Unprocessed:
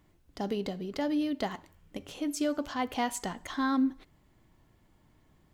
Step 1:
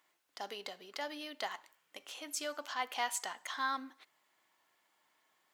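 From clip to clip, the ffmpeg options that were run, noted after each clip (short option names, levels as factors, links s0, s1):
-af "highpass=940"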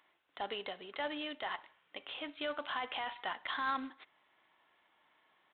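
-af "alimiter=level_in=2.24:limit=0.0631:level=0:latency=1:release=19,volume=0.447,aresample=8000,acrusher=bits=4:mode=log:mix=0:aa=0.000001,aresample=44100,volume=1.68"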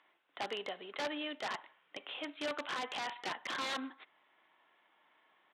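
-filter_complex "[0:a]acrossover=split=370[s0][s1];[s1]aeval=exprs='(mod(35.5*val(0)+1,2)-1)/35.5':c=same[s2];[s0][s2]amix=inputs=2:normalize=0,highpass=190,lowpass=4000,volume=1.19"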